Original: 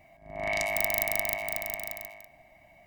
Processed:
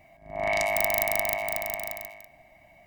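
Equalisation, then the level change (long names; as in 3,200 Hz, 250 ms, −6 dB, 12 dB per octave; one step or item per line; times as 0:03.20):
dynamic equaliser 860 Hz, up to +5 dB, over −47 dBFS, Q 1.1
+1.5 dB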